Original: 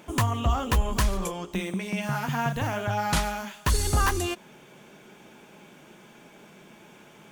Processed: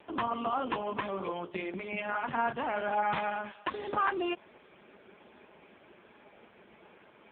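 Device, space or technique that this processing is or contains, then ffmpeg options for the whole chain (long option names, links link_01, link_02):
telephone: -filter_complex "[0:a]asplit=3[link_01][link_02][link_03];[link_01]afade=type=out:start_time=1.56:duration=0.02[link_04];[link_02]highpass=frequency=200:width=0.5412,highpass=frequency=200:width=1.3066,afade=type=in:start_time=1.56:duration=0.02,afade=type=out:start_time=2.2:duration=0.02[link_05];[link_03]afade=type=in:start_time=2.2:duration=0.02[link_06];[link_04][link_05][link_06]amix=inputs=3:normalize=0,highpass=280,lowpass=3100" -ar 8000 -c:a libopencore_amrnb -b:a 5150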